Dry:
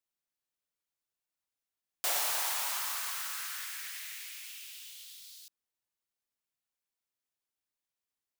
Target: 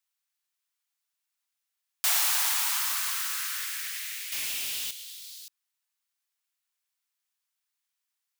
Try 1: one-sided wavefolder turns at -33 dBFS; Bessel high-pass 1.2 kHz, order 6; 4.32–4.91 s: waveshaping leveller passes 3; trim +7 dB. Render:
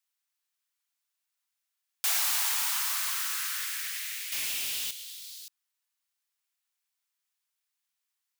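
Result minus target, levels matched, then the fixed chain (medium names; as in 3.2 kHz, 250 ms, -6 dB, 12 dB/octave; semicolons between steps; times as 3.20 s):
one-sided wavefolder: distortion +23 dB
one-sided wavefolder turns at -22.5 dBFS; Bessel high-pass 1.2 kHz, order 6; 4.32–4.91 s: waveshaping leveller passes 3; trim +7 dB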